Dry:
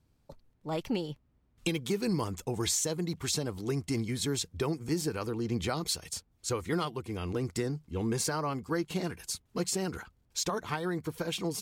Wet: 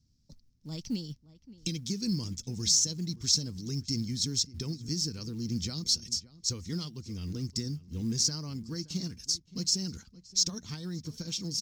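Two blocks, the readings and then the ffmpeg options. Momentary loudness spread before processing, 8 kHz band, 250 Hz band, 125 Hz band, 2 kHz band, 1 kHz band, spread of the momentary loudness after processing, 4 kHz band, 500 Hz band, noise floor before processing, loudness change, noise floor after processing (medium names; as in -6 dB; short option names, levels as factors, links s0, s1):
7 LU, +4.5 dB, -2.0 dB, 0.0 dB, -13.0 dB, -19.0 dB, 12 LU, +6.5 dB, -13.0 dB, -70 dBFS, +2.0 dB, -65 dBFS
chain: -filter_complex "[0:a]firequalizer=gain_entry='entry(140,0);entry(230,1);entry(360,-12);entry(740,-21);entry(1100,-19);entry(1900,-13);entry(2700,-10);entry(5400,13);entry(9300,-12)':delay=0.05:min_phase=1,acrusher=bits=8:mode=log:mix=0:aa=0.000001,asplit=2[s0][s1];[s1]adelay=571.4,volume=0.126,highshelf=f=4000:g=-12.9[s2];[s0][s2]amix=inputs=2:normalize=0"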